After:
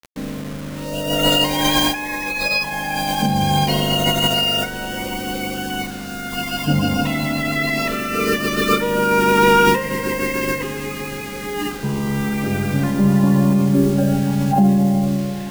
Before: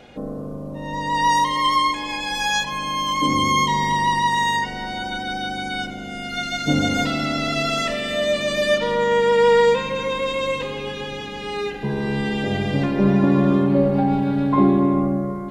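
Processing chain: bit crusher 6-bit; formant shift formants -5 st; trim +2 dB

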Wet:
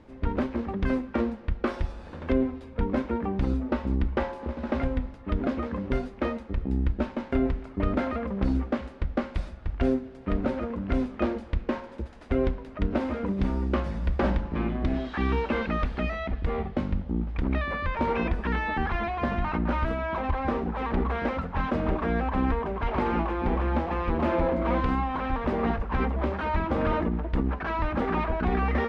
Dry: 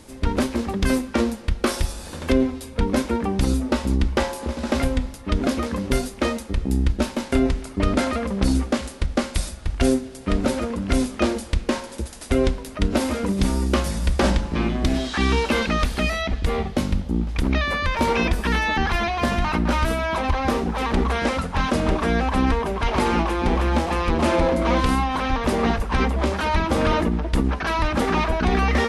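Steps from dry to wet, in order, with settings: low-pass 2 kHz 12 dB/octave; trim -5.5 dB

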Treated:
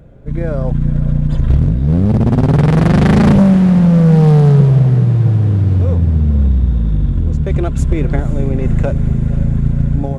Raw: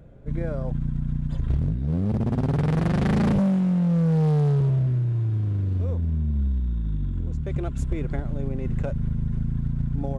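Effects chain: level rider gain up to 5 dB; echo that smears into a reverb 513 ms, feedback 68%, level -13.5 dB; trim +7 dB

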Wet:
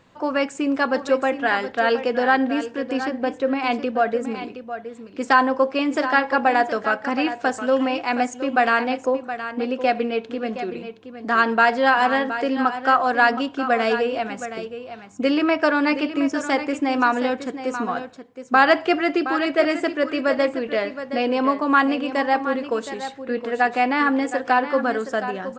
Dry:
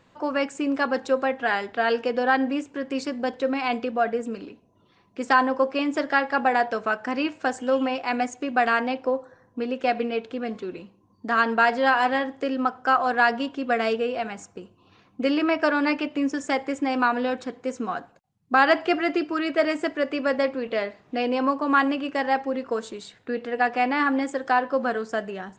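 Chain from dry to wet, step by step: 2.97–3.64 s: treble shelf 4.2 kHz -10.5 dB; on a send: delay 719 ms -11 dB; on the sum: trim +3 dB

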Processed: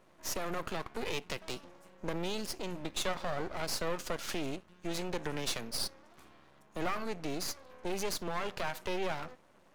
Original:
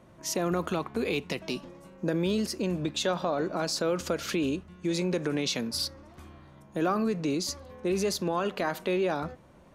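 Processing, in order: high-pass 440 Hz 6 dB/octave; half-wave rectifier

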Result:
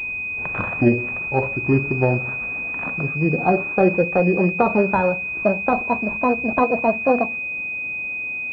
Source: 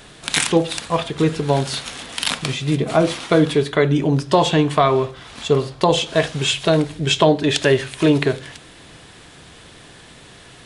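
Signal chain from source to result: gliding tape speed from 58% -> 192%; distance through air 380 m; class-D stage that switches slowly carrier 2.5 kHz

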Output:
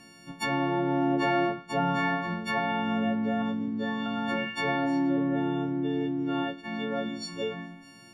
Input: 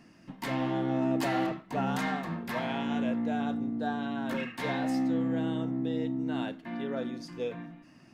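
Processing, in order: partials quantised in pitch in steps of 4 st; 3.42–4.06 s: comb of notches 680 Hz; low-pass that closes with the level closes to 2 kHz, closed at -26.5 dBFS; trim +2.5 dB

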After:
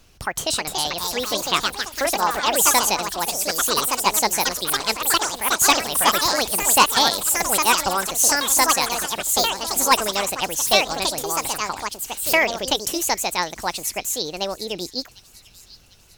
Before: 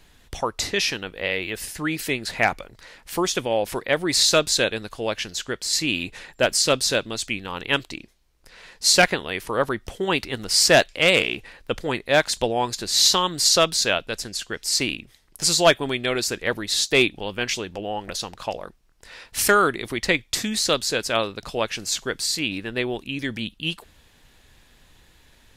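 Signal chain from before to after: ever faster or slower copies 566 ms, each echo +3 st, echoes 3; wide varispeed 1.58×; feedback echo behind a high-pass 748 ms, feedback 45%, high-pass 3.5 kHz, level -16.5 dB

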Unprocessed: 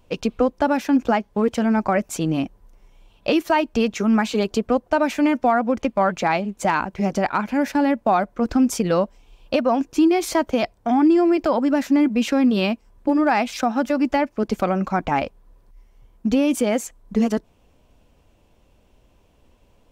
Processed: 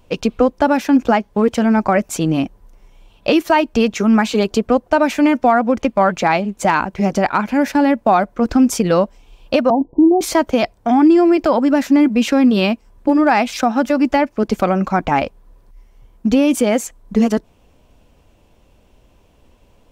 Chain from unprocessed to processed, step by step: 9.70–10.21 s: steep low-pass 980 Hz 96 dB/octave; trim +5 dB

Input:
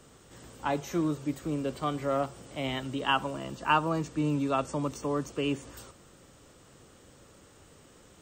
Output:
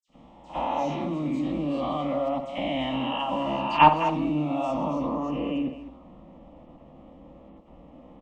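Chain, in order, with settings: reverse spectral sustain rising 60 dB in 0.84 s; expander -49 dBFS; treble shelf 2.3 kHz +7 dB, from 4.83 s -6.5 dB; level held to a coarse grid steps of 20 dB; static phaser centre 410 Hz, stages 6; hard clipper -23 dBFS, distortion -11 dB; distance through air 160 m; phase dispersion lows, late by 76 ms, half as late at 2.8 kHz; speakerphone echo 210 ms, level -9 dB; reverberation, pre-delay 53 ms, DRR -13.5 dB; tape noise reduction on one side only decoder only; trim +2 dB

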